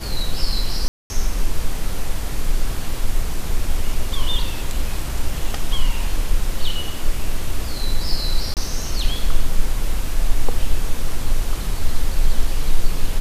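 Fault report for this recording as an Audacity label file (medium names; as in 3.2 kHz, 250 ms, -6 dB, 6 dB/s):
0.880000	1.100000	dropout 220 ms
8.540000	8.570000	dropout 28 ms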